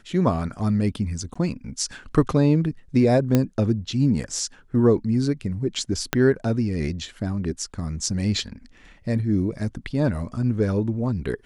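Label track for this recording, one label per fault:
1.340000	1.350000	drop-out 15 ms
3.350000	3.350000	click −6 dBFS
6.130000	6.130000	click −5 dBFS

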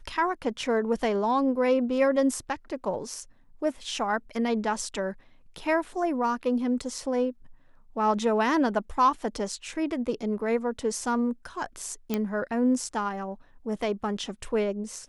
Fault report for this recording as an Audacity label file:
12.140000	12.140000	click −13 dBFS

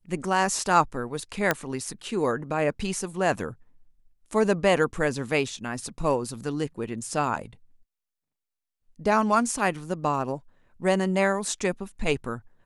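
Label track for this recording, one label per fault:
1.510000	1.510000	click −7 dBFS

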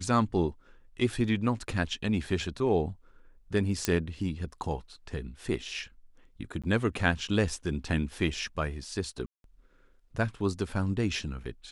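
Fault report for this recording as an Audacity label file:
3.850000	3.850000	click −10 dBFS
6.620000	6.640000	drop-out 16 ms
9.260000	9.440000	drop-out 182 ms

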